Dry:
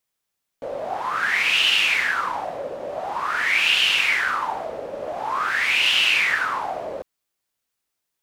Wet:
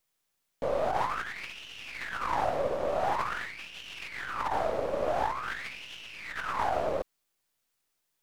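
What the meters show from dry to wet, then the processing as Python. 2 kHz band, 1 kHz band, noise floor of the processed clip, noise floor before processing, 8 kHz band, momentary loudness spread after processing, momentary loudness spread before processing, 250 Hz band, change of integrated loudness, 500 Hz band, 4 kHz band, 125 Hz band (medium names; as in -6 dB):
-17.5 dB, -5.0 dB, -79 dBFS, -80 dBFS, -16.5 dB, 11 LU, 15 LU, -1.0 dB, -13.0 dB, 0.0 dB, -23.0 dB, no reading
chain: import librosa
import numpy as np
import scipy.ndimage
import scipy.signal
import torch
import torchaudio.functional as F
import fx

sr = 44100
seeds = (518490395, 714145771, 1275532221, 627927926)

y = np.where(x < 0.0, 10.0 ** (-7.0 / 20.0) * x, x)
y = fx.over_compress(y, sr, threshold_db=-30.0, ratio=-0.5)
y = F.gain(torch.from_numpy(y), -2.0).numpy()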